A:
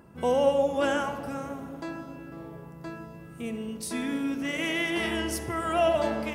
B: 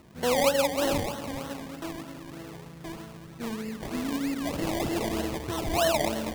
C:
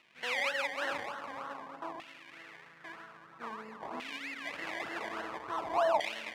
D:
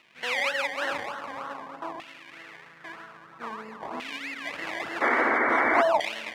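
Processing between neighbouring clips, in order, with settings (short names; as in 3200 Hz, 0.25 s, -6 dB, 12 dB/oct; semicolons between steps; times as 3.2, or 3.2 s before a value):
decimation with a swept rate 26×, swing 60% 3.2 Hz; dynamic EQ 1400 Hz, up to -6 dB, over -42 dBFS, Q 1.9
added harmonics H 5 -18 dB, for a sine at -10 dBFS; LFO band-pass saw down 0.5 Hz 900–2600 Hz
painted sound noise, 5.01–5.82, 220–2300 Hz -29 dBFS; gain +5.5 dB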